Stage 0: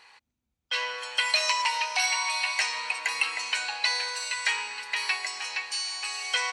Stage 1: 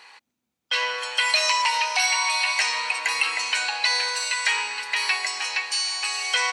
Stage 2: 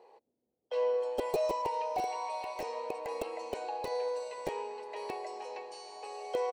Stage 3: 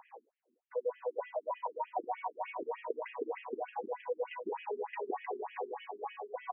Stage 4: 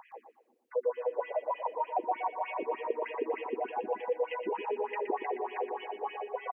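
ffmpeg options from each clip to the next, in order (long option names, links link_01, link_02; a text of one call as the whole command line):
ffmpeg -i in.wav -filter_complex "[0:a]highpass=200,asplit=2[link_01][link_02];[link_02]alimiter=limit=-21dB:level=0:latency=1,volume=0.5dB[link_03];[link_01][link_03]amix=inputs=2:normalize=0" out.wav
ffmpeg -i in.wav -af "aeval=exprs='(mod(3.76*val(0)+1,2)-1)/3.76':channel_layout=same,firequalizer=gain_entry='entry(220,0);entry(440,15);entry(1400,-22)':delay=0.05:min_phase=1,volume=-5dB" out.wav
ffmpeg -i in.wav -af "areverse,acompressor=threshold=-41dB:ratio=8,areverse,afftfilt=real='re*between(b*sr/1024,270*pow(2400/270,0.5+0.5*sin(2*PI*3.3*pts/sr))/1.41,270*pow(2400/270,0.5+0.5*sin(2*PI*3.3*pts/sr))*1.41)':imag='im*between(b*sr/1024,270*pow(2400/270,0.5+0.5*sin(2*PI*3.3*pts/sr))/1.41,270*pow(2400/270,0.5+0.5*sin(2*PI*3.3*pts/sr))*1.41)':win_size=1024:overlap=0.75,volume=12dB" out.wav
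ffmpeg -i in.wav -af "aecho=1:1:120|240|360|480:0.376|0.135|0.0487|0.0175,volume=4.5dB" out.wav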